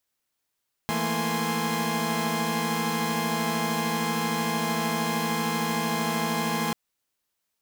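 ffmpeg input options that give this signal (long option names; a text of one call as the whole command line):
ffmpeg -f lavfi -i "aevalsrc='0.0355*((2*mod(164.81*t,1)-1)+(2*mod(220*t,1)-1)+(2*mod(233.08*t,1)-1)+(2*mod(830.61*t,1)-1)+(2*mod(1046.5*t,1)-1))':duration=5.84:sample_rate=44100" out.wav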